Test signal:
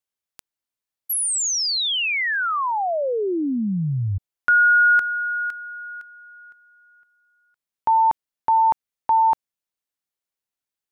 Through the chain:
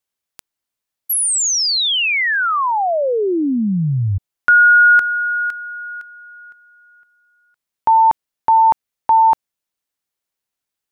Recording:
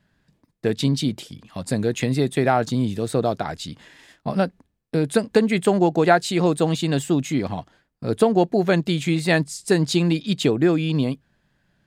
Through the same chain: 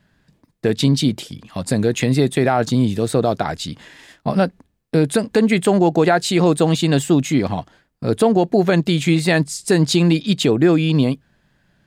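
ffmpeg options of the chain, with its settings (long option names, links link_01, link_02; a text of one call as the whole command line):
ffmpeg -i in.wav -af "alimiter=level_in=10dB:limit=-1dB:release=50:level=0:latency=1,volume=-4.5dB" out.wav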